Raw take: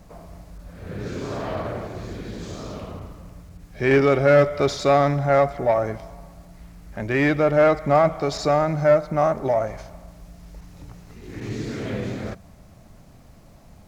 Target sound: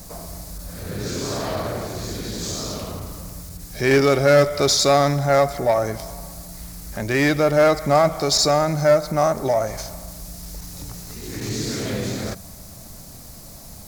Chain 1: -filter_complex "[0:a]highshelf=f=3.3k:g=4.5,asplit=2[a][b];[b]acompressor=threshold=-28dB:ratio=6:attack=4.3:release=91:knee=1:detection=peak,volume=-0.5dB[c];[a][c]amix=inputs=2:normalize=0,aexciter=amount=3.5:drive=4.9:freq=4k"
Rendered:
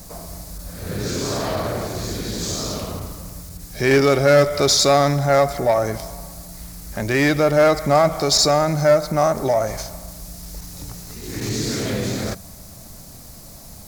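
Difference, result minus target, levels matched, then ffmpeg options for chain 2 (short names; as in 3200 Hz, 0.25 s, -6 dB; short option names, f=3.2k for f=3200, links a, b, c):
compressor: peak gain reduction -7.5 dB
-filter_complex "[0:a]highshelf=f=3.3k:g=4.5,asplit=2[a][b];[b]acompressor=threshold=-37dB:ratio=6:attack=4.3:release=91:knee=1:detection=peak,volume=-0.5dB[c];[a][c]amix=inputs=2:normalize=0,aexciter=amount=3.5:drive=4.9:freq=4k"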